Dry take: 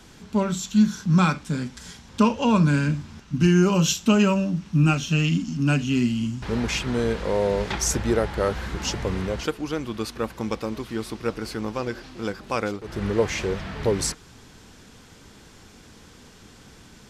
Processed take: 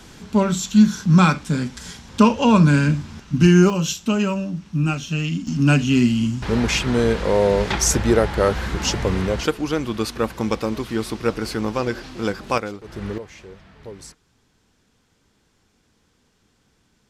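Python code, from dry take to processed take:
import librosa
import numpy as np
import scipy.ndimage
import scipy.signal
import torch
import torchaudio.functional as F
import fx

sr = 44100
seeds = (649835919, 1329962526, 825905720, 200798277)

y = fx.gain(x, sr, db=fx.steps((0.0, 5.0), (3.7, -2.0), (5.47, 5.5), (12.58, -2.5), (13.18, -15.0)))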